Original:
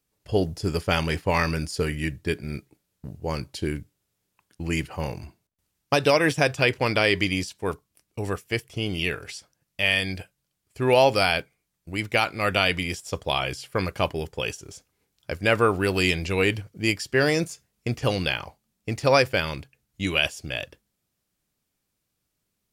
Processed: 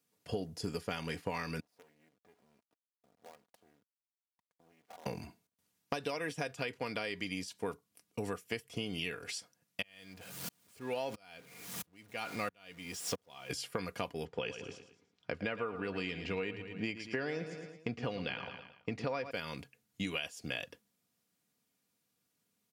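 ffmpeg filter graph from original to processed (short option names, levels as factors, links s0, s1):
-filter_complex "[0:a]asettb=1/sr,asplit=3[s0][s1][s2];[s0]atrim=end=1.604[s3];[s1]atrim=start=1.6:end=5.06,asetpts=PTS-STARTPTS,afade=t=in:d=0.004:c=qsin,afade=t=out:st=3.456:d=0.004:c=qsin,acompressor=threshold=0.0112:ratio=8:attack=3.2:release=140:knee=1:detection=peak,bandpass=f=680:t=q:w=4.2,acrusher=bits=9:dc=4:mix=0:aa=0.000001[s4];[s2]atrim=start=5.056[s5];[s3][s4]acrossfade=d=0.004:c1=hsin:c2=qsin[s6];[s6][s5]acrossfade=d=0.004:c1=qsin:c2=hsin,asettb=1/sr,asplit=3[s7][s8][s9];[s7]atrim=end=9.824[s10];[s8]atrim=start=9.82:end=13.5,asetpts=PTS-STARTPTS,afade=t=in:d=0.004:c=qsin,afade=t=out:st=3.676:d=0.004:c=qsin,aeval=exprs='val(0)+0.5*0.0316*sgn(val(0))':c=same,aeval=exprs='val(0)*pow(10,-39*if(lt(mod(-1.5*n/s,1),2*abs(-1.5)/1000),1-mod(-1.5*n/s,1)/(2*abs(-1.5)/1000),(mod(-1.5*n/s,1)-2*abs(-1.5)/1000)/(1-2*abs(-1.5)/1000))/20)':c=same[s11];[s9]atrim=start=13.496[s12];[s10][s11]acrossfade=d=0.004:c1=hsin:c2=qsin[s13];[s13][s12]acrossfade=d=0.004:c1=qsin:c2=hsin,asettb=1/sr,asplit=3[s14][s15][s16];[s14]atrim=end=14.254[s17];[s15]atrim=start=14.25:end=19.31,asetpts=PTS-STARTPTS,afade=t=in:d=0.004:c=qsin,afade=t=out:st=5.056:d=0.004:c=qsin,lowpass=3300,aecho=1:1:111|222|333|444:0.237|0.0996|0.0418|0.0176,atrim=end_sample=223146[s18];[s16]atrim=start=19.306[s19];[s17][s18]acrossfade=d=0.004:c1=hsin:c2=qsin[s20];[s20][s19]acrossfade=d=0.004:c1=qsin:c2=hsin,highpass=f=100:w=0.5412,highpass=f=100:w=1.3066,aecho=1:1:4.2:0.43,acompressor=threshold=0.0282:ratio=12,volume=0.75"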